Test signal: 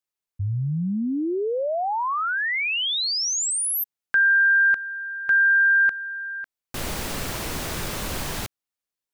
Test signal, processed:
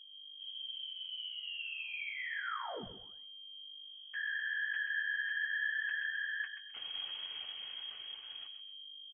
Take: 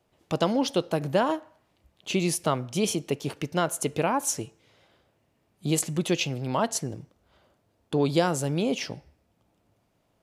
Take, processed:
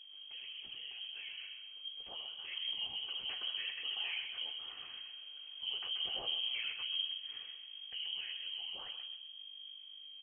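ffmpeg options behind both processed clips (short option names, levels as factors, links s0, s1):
-filter_complex "[0:a]lowshelf=f=180:g=12,aecho=1:1:2.8:0.38,areverse,acompressor=threshold=0.0158:ratio=12:attack=0.44:release=21:knee=1:detection=peak,areverse,alimiter=level_in=7.5:limit=0.0631:level=0:latency=1:release=14,volume=0.133,dynaudnorm=f=230:g=21:m=2.99,afftfilt=real='hypot(re,im)*cos(2*PI*random(0))':imag='hypot(re,im)*sin(2*PI*random(1))':win_size=512:overlap=0.75,aeval=exprs='val(0)+0.002*(sin(2*PI*50*n/s)+sin(2*PI*2*50*n/s)/2+sin(2*PI*3*50*n/s)/3+sin(2*PI*4*50*n/s)/4+sin(2*PI*5*50*n/s)/5)':c=same,flanger=delay=9.6:depth=8.6:regen=-35:speed=0.58:shape=triangular,asplit=2[s0][s1];[s1]adelay=130,lowpass=f=1500:p=1,volume=0.501,asplit=2[s2][s3];[s3]adelay=130,lowpass=f=1500:p=1,volume=0.48,asplit=2[s4][s5];[s5]adelay=130,lowpass=f=1500:p=1,volume=0.48,asplit=2[s6][s7];[s7]adelay=130,lowpass=f=1500:p=1,volume=0.48,asplit=2[s8][s9];[s9]adelay=130,lowpass=f=1500:p=1,volume=0.48,asplit=2[s10][s11];[s11]adelay=130,lowpass=f=1500:p=1,volume=0.48[s12];[s2][s4][s6][s8][s10][s12]amix=inputs=6:normalize=0[s13];[s0][s13]amix=inputs=2:normalize=0,lowpass=f=2800:t=q:w=0.5098,lowpass=f=2800:t=q:w=0.6013,lowpass=f=2800:t=q:w=0.9,lowpass=f=2800:t=q:w=2.563,afreqshift=-3300,volume=2.37"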